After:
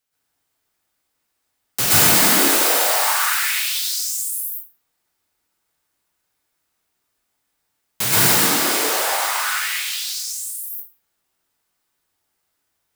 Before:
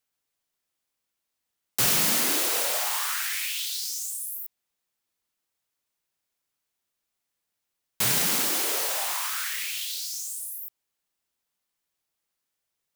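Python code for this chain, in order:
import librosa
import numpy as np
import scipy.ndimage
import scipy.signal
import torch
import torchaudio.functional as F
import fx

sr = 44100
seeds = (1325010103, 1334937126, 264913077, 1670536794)

y = fx.high_shelf(x, sr, hz=11000.0, db=-5.5, at=(8.33, 10.58))
y = fx.rev_plate(y, sr, seeds[0], rt60_s=0.65, hf_ratio=0.45, predelay_ms=105, drr_db=-8.0)
y = y * librosa.db_to_amplitude(2.5)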